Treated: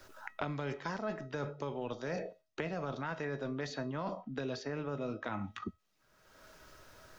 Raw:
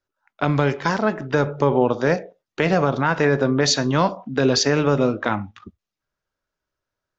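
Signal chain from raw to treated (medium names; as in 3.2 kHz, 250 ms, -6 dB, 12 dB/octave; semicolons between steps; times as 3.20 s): reverse; compression 12:1, threshold -31 dBFS, peak gain reduction 19.5 dB; reverse; feedback comb 640 Hz, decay 0.28 s, mix 70%; three bands compressed up and down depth 100%; trim +6 dB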